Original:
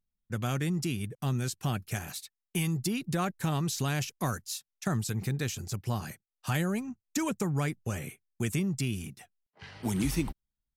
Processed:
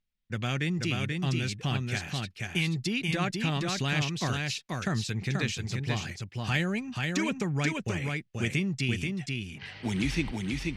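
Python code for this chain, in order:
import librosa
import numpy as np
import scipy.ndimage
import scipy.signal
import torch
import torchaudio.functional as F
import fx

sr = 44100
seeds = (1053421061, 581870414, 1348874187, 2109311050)

p1 = scipy.signal.sosfilt(scipy.signal.butter(2, 4100.0, 'lowpass', fs=sr, output='sos'), x)
p2 = fx.high_shelf_res(p1, sr, hz=1600.0, db=6.5, q=1.5)
y = p2 + fx.echo_single(p2, sr, ms=483, db=-3.5, dry=0)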